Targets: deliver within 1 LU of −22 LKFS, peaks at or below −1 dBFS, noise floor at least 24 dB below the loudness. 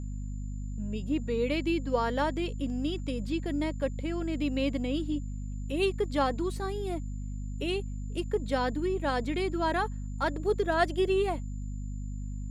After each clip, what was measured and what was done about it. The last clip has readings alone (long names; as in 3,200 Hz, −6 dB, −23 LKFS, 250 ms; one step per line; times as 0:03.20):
mains hum 50 Hz; hum harmonics up to 250 Hz; level of the hum −33 dBFS; interfering tone 7,100 Hz; level of the tone −60 dBFS; integrated loudness −31.5 LKFS; sample peak −13.0 dBFS; target loudness −22.0 LKFS
→ mains-hum notches 50/100/150/200/250 Hz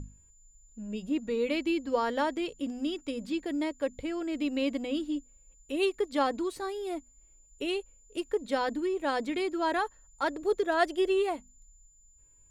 mains hum none found; interfering tone 7,100 Hz; level of the tone −60 dBFS
→ notch filter 7,100 Hz, Q 30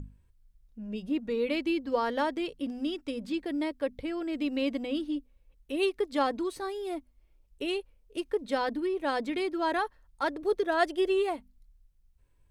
interfering tone none found; integrated loudness −31.5 LKFS; sample peak −13.0 dBFS; target loudness −22.0 LKFS
→ level +9.5 dB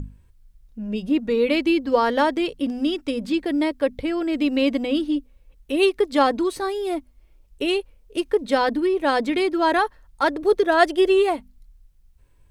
integrated loudness −22.0 LKFS; sample peak −3.5 dBFS; background noise floor −56 dBFS